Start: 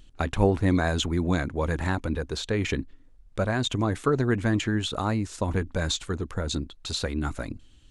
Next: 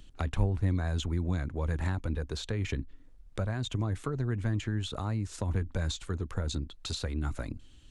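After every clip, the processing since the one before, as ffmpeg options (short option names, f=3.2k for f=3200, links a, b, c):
-filter_complex "[0:a]acrossover=split=130[a][b];[b]acompressor=threshold=-36dB:ratio=4[c];[a][c]amix=inputs=2:normalize=0"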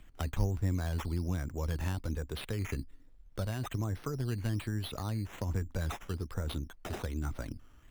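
-af "acrusher=samples=8:mix=1:aa=0.000001:lfo=1:lforange=4.8:lforate=1.2,volume=-3dB"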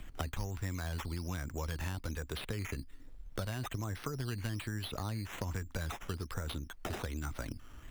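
-filter_complex "[0:a]acrossover=split=1000|4200[a][b][c];[a]acompressor=threshold=-46dB:ratio=4[d];[b]acompressor=threshold=-53dB:ratio=4[e];[c]acompressor=threshold=-58dB:ratio=4[f];[d][e][f]amix=inputs=3:normalize=0,volume=8dB"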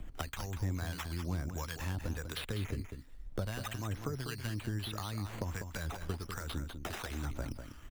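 -filter_complex "[0:a]acrossover=split=890[a][b];[a]aeval=exprs='val(0)*(1-0.7/2+0.7/2*cos(2*PI*1.5*n/s))':c=same[c];[b]aeval=exprs='val(0)*(1-0.7/2-0.7/2*cos(2*PI*1.5*n/s))':c=same[d];[c][d]amix=inputs=2:normalize=0,asplit=2[e][f];[f]aecho=0:1:197:0.398[g];[e][g]amix=inputs=2:normalize=0,volume=3dB"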